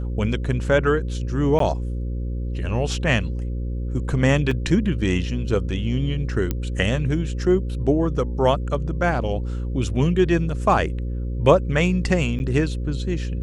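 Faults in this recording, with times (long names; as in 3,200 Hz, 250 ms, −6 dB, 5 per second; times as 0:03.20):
mains buzz 60 Hz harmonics 9 −26 dBFS
0:01.59–0:01.60: drop-out 13 ms
0:04.51: drop-out 4.1 ms
0:06.51: click −10 dBFS
0:12.39–0:12.40: drop-out 9.8 ms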